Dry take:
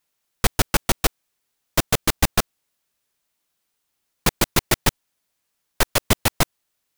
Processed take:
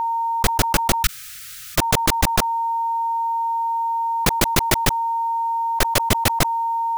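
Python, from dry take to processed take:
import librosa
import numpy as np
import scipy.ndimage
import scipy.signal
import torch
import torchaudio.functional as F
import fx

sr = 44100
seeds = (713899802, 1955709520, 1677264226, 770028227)

y = x + 10.0 ** (-36.0 / 20.0) * np.sin(2.0 * np.pi * 920.0 * np.arange(len(x)) / sr)
y = fx.brickwall_bandstop(y, sr, low_hz=160.0, high_hz=1200.0, at=(1.04, 1.78))
y = fx.env_flatten(y, sr, amount_pct=70)
y = y * librosa.db_to_amplitude(-1.0)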